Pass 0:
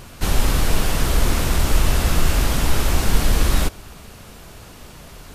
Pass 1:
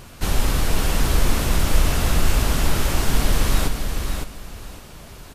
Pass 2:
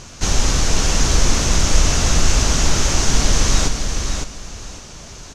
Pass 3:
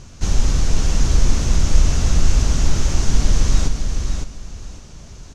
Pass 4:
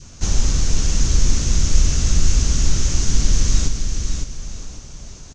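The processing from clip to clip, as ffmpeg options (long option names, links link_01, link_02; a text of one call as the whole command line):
ffmpeg -i in.wav -af "aecho=1:1:557|1114|1671:0.501|0.11|0.0243,volume=-2dB" out.wav
ffmpeg -i in.wav -af "lowpass=frequency=6300:width_type=q:width=4.4,volume=2.5dB" out.wav
ffmpeg -i in.wav -af "lowshelf=frequency=280:gain=11,volume=-9dB" out.wav
ffmpeg -i in.wav -af "lowpass=frequency=6800:width_type=q:width=2,adynamicequalizer=threshold=0.00501:dfrequency=770:dqfactor=0.99:tfrequency=770:tqfactor=0.99:attack=5:release=100:ratio=0.375:range=3.5:mode=cutabove:tftype=bell,aecho=1:1:971:0.141,volume=-1dB" out.wav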